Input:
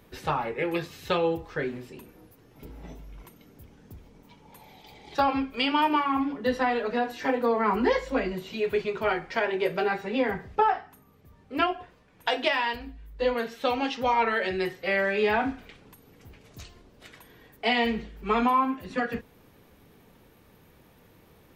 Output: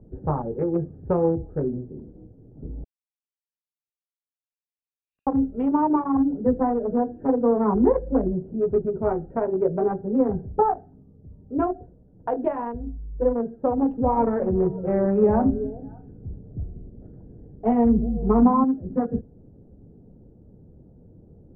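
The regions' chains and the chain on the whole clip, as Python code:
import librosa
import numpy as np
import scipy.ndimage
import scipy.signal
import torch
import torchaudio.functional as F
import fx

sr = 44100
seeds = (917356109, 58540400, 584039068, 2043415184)

y = fx.chain(x, sr, fx.block_float(bits=3),
    fx.steep_highpass(hz=2500.0, slope=72),
    fx.pre_swell(db_per_s=110.0), at=(2.84, 5.27))
y = fx.chain(y, sr, fx.cvsd(bps=64000),
    fx.low_shelf(hz=220.0, db=6.0),
    fx.echo_stepped(ms=189, hz=170.0, octaves=1.4, feedback_pct=70, wet_db=-6.5), at=(13.78, 18.64))
y = fx.wiener(y, sr, points=41)
y = scipy.signal.sosfilt(scipy.signal.butter(4, 1100.0, 'lowpass', fs=sr, output='sos'), y)
y = fx.low_shelf(y, sr, hz=460.0, db=11.0)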